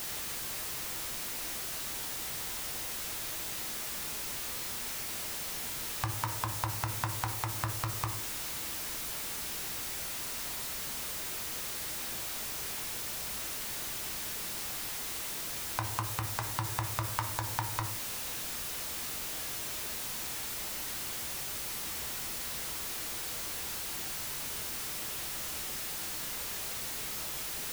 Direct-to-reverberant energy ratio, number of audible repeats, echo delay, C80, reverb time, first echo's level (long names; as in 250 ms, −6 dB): 5.0 dB, no echo audible, no echo audible, 14.0 dB, 0.60 s, no echo audible